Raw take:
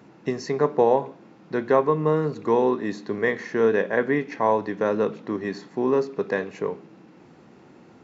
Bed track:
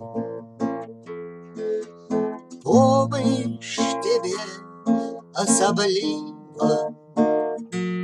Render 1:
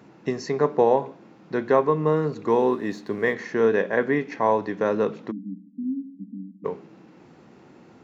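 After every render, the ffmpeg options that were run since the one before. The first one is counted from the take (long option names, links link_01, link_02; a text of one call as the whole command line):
ffmpeg -i in.wav -filter_complex "[0:a]asettb=1/sr,asplit=3[link_01][link_02][link_03];[link_01]atrim=end=2.494[link_04];[link_02]atrim=start=2.49:end=3.34,asetpts=PTS-STARTPTS,afade=type=in:duration=0.004:curve=qsin,afade=type=out:start_time=0.846:duration=0.004:curve=qsin,aeval=exprs='sgn(val(0))*max(abs(val(0))-0.00188,0)':channel_layout=same[link_05];[link_03]atrim=start=3.336[link_06];[link_04][link_05]acrossfade=duration=0.004:curve1=hsin:curve2=qsin[link_07];[link_07][link_06]acrossfade=duration=0.004:curve1=qsin:curve2=hsin,asplit=3[link_08][link_09][link_10];[link_08]afade=type=out:start_time=5.3:duration=0.02[link_11];[link_09]asuperpass=centerf=230:order=12:qfactor=2.1,afade=type=in:start_time=5.3:duration=0.02,afade=type=out:start_time=6.64:duration=0.02[link_12];[link_10]afade=type=in:start_time=6.64:duration=0.02[link_13];[link_11][link_12][link_13]amix=inputs=3:normalize=0" out.wav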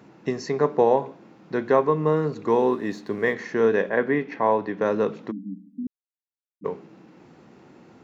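ffmpeg -i in.wav -filter_complex "[0:a]asettb=1/sr,asplit=3[link_01][link_02][link_03];[link_01]atrim=end=3.894[link_04];[link_02]atrim=start=3.89:end=4.82,asetpts=PTS-STARTPTS,afade=type=in:duration=0.004:curve=qsin,afade=type=out:start_time=0.926:duration=0.004:curve=qsin,highpass=100,lowpass=3800[link_05];[link_03]atrim=start=4.816[link_06];[link_04][link_05]acrossfade=duration=0.004:curve1=hsin:curve2=qsin[link_07];[link_07][link_06]acrossfade=duration=0.004:curve1=qsin:curve2=hsin,asplit=3[link_08][link_09][link_10];[link_08]atrim=end=5.87,asetpts=PTS-STARTPTS,afade=type=out:start_time=5.866:duration=0.004:curve=hsin[link_11];[link_09]atrim=start=5.87:end=6.61,asetpts=PTS-STARTPTS,volume=0[link_12];[link_10]atrim=start=6.61,asetpts=PTS-STARTPTS,afade=type=in:duration=0.004:curve=hsin[link_13];[link_11][link_12][link_13]concat=n=3:v=0:a=1" out.wav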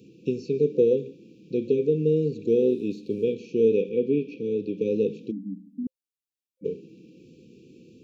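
ffmpeg -i in.wav -filter_complex "[0:a]acrossover=split=3300[link_01][link_02];[link_02]acompressor=threshold=-58dB:ratio=4:attack=1:release=60[link_03];[link_01][link_03]amix=inputs=2:normalize=0,afftfilt=real='re*(1-between(b*sr/4096,520,2300))':imag='im*(1-between(b*sr/4096,520,2300))':win_size=4096:overlap=0.75" out.wav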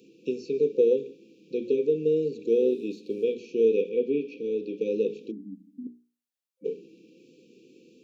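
ffmpeg -i in.wav -af "highpass=300,bandreject=frequency=60:width_type=h:width=6,bandreject=frequency=120:width_type=h:width=6,bandreject=frequency=180:width_type=h:width=6,bandreject=frequency=240:width_type=h:width=6,bandreject=frequency=300:width_type=h:width=6,bandreject=frequency=360:width_type=h:width=6,bandreject=frequency=420:width_type=h:width=6" out.wav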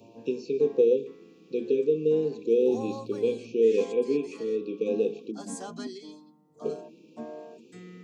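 ffmpeg -i in.wav -i bed.wav -filter_complex "[1:a]volume=-20.5dB[link_01];[0:a][link_01]amix=inputs=2:normalize=0" out.wav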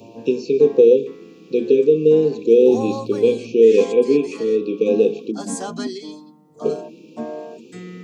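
ffmpeg -i in.wav -af "volume=10.5dB,alimiter=limit=-3dB:level=0:latency=1" out.wav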